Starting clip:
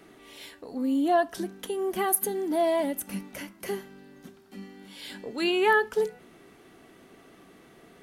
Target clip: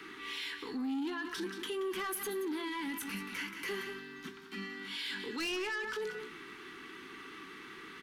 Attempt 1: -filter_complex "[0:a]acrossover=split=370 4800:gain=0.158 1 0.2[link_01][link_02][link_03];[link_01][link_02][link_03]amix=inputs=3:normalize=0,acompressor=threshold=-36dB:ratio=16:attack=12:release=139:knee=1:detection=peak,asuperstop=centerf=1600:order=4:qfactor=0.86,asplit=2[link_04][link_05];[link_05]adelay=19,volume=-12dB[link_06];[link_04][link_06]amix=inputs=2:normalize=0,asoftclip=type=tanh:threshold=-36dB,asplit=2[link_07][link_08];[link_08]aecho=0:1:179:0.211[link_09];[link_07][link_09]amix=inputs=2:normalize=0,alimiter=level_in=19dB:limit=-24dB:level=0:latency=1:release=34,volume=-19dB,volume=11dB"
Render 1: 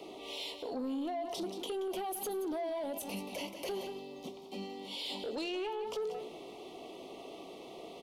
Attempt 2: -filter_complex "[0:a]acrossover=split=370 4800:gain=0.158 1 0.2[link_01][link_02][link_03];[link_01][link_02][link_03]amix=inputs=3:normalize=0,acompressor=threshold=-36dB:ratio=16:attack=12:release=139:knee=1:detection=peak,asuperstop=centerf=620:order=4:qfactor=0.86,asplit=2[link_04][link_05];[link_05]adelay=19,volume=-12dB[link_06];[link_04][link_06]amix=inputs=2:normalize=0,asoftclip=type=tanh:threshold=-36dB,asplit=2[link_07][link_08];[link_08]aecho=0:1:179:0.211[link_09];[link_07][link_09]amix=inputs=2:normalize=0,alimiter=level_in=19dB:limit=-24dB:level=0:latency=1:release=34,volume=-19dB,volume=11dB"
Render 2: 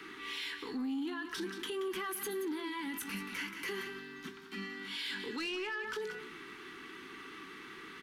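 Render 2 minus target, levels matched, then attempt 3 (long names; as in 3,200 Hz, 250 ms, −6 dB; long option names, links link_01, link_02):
downward compressor: peak gain reduction +6.5 dB
-filter_complex "[0:a]acrossover=split=370 4800:gain=0.158 1 0.2[link_01][link_02][link_03];[link_01][link_02][link_03]amix=inputs=3:normalize=0,acompressor=threshold=-29dB:ratio=16:attack=12:release=139:knee=1:detection=peak,asuperstop=centerf=620:order=4:qfactor=0.86,asplit=2[link_04][link_05];[link_05]adelay=19,volume=-12dB[link_06];[link_04][link_06]amix=inputs=2:normalize=0,asoftclip=type=tanh:threshold=-36dB,asplit=2[link_07][link_08];[link_08]aecho=0:1:179:0.211[link_09];[link_07][link_09]amix=inputs=2:normalize=0,alimiter=level_in=19dB:limit=-24dB:level=0:latency=1:release=34,volume=-19dB,volume=11dB"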